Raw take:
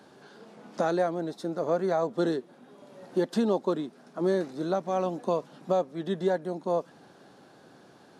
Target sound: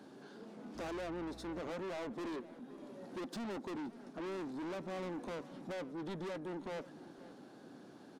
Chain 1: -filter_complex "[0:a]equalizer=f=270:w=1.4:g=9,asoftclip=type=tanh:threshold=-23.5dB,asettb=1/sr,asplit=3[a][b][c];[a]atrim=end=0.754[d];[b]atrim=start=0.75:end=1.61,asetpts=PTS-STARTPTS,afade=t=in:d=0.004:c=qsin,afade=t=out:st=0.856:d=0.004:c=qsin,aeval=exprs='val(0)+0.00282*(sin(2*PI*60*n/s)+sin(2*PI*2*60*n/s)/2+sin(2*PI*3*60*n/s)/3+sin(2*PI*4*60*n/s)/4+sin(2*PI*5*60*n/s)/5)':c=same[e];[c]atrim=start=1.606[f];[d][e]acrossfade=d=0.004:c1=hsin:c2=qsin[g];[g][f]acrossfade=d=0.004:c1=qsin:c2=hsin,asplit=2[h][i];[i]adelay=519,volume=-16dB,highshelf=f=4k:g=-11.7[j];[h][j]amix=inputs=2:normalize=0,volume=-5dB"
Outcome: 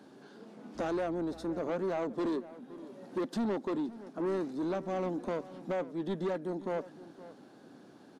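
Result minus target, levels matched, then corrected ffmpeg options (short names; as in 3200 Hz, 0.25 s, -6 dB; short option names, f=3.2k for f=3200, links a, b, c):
soft clip: distortion -6 dB
-filter_complex "[0:a]equalizer=f=270:w=1.4:g=9,asoftclip=type=tanh:threshold=-35dB,asettb=1/sr,asplit=3[a][b][c];[a]atrim=end=0.754[d];[b]atrim=start=0.75:end=1.61,asetpts=PTS-STARTPTS,afade=t=in:d=0.004:c=qsin,afade=t=out:st=0.856:d=0.004:c=qsin,aeval=exprs='val(0)+0.00282*(sin(2*PI*60*n/s)+sin(2*PI*2*60*n/s)/2+sin(2*PI*3*60*n/s)/3+sin(2*PI*4*60*n/s)/4+sin(2*PI*5*60*n/s)/5)':c=same[e];[c]atrim=start=1.606[f];[d][e]acrossfade=d=0.004:c1=hsin:c2=qsin[g];[g][f]acrossfade=d=0.004:c1=qsin:c2=hsin,asplit=2[h][i];[i]adelay=519,volume=-16dB,highshelf=f=4k:g=-11.7[j];[h][j]amix=inputs=2:normalize=0,volume=-5dB"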